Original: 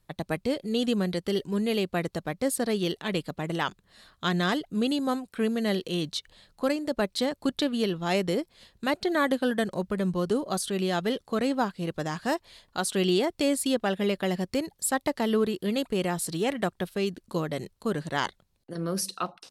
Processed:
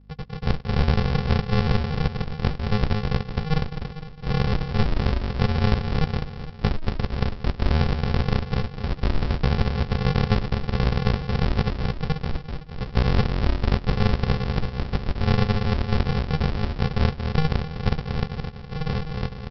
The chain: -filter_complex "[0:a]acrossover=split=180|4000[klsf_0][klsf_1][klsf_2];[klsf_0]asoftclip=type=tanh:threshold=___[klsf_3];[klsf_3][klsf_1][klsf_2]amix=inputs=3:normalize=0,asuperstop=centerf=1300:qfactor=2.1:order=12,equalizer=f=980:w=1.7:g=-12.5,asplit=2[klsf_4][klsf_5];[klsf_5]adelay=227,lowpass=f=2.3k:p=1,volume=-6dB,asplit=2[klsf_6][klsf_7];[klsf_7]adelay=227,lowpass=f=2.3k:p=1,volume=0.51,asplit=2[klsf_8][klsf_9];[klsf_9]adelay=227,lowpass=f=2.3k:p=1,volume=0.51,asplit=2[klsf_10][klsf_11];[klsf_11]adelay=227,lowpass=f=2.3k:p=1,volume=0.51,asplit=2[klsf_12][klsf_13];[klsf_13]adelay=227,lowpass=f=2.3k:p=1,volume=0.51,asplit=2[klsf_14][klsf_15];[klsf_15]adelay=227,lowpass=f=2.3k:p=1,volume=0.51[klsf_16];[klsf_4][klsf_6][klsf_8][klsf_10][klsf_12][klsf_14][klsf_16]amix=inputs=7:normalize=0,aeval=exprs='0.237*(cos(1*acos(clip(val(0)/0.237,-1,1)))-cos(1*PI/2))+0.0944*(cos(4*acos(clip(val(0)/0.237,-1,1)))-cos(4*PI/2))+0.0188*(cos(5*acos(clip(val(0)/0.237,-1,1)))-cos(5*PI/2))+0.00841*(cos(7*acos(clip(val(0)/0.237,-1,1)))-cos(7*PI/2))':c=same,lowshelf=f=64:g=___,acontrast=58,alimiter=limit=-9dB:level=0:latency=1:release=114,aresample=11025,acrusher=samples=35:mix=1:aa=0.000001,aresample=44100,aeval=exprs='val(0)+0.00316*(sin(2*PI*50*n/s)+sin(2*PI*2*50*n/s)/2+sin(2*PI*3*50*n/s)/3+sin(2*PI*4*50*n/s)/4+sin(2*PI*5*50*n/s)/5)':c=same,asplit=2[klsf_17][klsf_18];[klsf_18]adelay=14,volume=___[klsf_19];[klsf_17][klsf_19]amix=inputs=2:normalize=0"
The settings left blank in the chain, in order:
-38dB, -5, -14dB